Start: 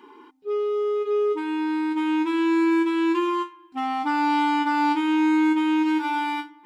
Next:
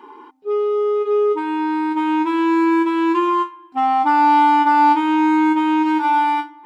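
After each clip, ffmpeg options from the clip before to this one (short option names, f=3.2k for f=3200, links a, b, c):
-af "equalizer=f=770:t=o:w=1.8:g=11"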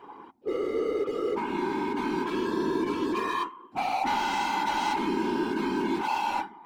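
-af "volume=20.5dB,asoftclip=hard,volume=-20.5dB,afftfilt=real='hypot(re,im)*cos(2*PI*random(0))':imag='hypot(re,im)*sin(2*PI*random(1))':win_size=512:overlap=0.75"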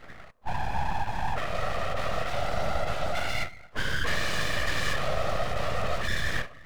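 -af "aeval=exprs='abs(val(0))':c=same,volume=2.5dB"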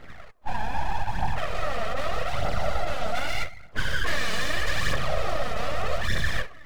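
-af "aphaser=in_gain=1:out_gain=1:delay=4.7:decay=0.49:speed=0.81:type=triangular"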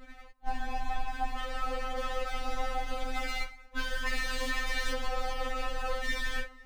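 -af "aeval=exprs='val(0)*sin(2*PI*21*n/s)':c=same,afftfilt=real='re*3.46*eq(mod(b,12),0)':imag='im*3.46*eq(mod(b,12),0)':win_size=2048:overlap=0.75"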